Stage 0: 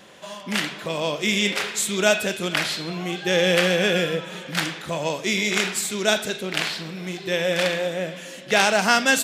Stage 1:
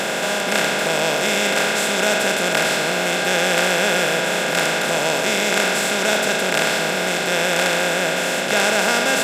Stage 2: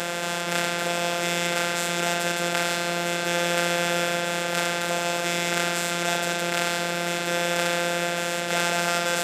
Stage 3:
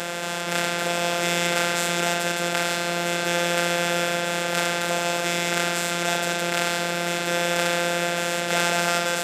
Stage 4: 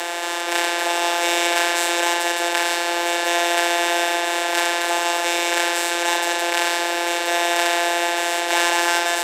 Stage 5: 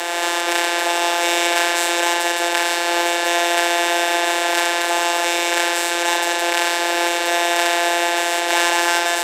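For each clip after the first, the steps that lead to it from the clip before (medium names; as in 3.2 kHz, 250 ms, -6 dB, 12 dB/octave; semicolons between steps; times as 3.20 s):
spectral levelling over time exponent 0.2; trim -6.5 dB
robot voice 173 Hz; trim -4 dB
level rider; trim -1 dB
frequency shift +170 Hz; trim +3.5 dB
recorder AGC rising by 18 dB/s; trim +1.5 dB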